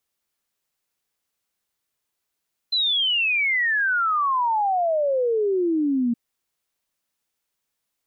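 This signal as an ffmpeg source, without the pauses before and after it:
-f lavfi -i "aevalsrc='0.119*clip(min(t,3.42-t)/0.01,0,1)*sin(2*PI*4100*3.42/log(230/4100)*(exp(log(230/4100)*t/3.42)-1))':d=3.42:s=44100"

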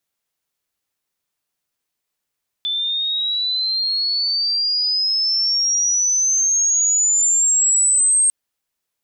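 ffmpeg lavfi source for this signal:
-f lavfi -i "aevalsrc='pow(10,(-19+7*t/5.65)/20)*sin(2*PI*3500*5.65/log(8500/3500)*(exp(log(8500/3500)*t/5.65)-1))':d=5.65:s=44100"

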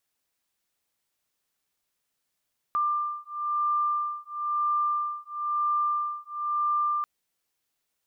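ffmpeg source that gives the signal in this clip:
-f lavfi -i "aevalsrc='0.0398*(sin(2*PI*1190*t)+sin(2*PI*1191*t))':d=4.29:s=44100"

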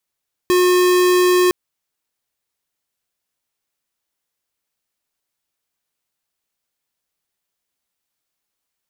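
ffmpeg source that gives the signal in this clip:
-f lavfi -i "aevalsrc='0.211*(2*lt(mod(361*t,1),0.5)-1)':d=1.01:s=44100"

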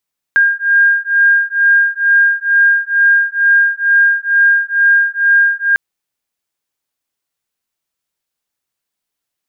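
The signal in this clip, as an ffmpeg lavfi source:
-f lavfi -i "aevalsrc='0.266*(sin(2*PI*1610*t)+sin(2*PI*1612.2*t))':d=5.4:s=44100"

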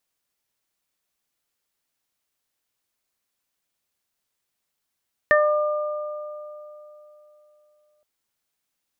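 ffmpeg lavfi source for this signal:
-f lavfi -i "aevalsrc='0.178*pow(10,-3*t/3.35)*sin(2*PI*600*t)+0.0944*pow(10,-3*t/2.74)*sin(2*PI*1200*t)+0.251*pow(10,-3*t/0.28)*sin(2*PI*1800*t)':d=2.72:s=44100"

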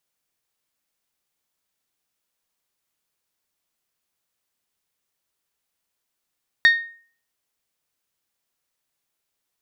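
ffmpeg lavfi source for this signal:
-f lavfi -i "aevalsrc='0.398*pow(10,-3*t/0.46)*sin(2*PI*1850*t)+0.141*pow(10,-3*t/0.283)*sin(2*PI*3700*t)+0.0501*pow(10,-3*t/0.249)*sin(2*PI*4440*t)+0.0178*pow(10,-3*t/0.213)*sin(2*PI*5550*t)+0.00631*pow(10,-3*t/0.174)*sin(2*PI*7400*t)':d=0.89:s=44100"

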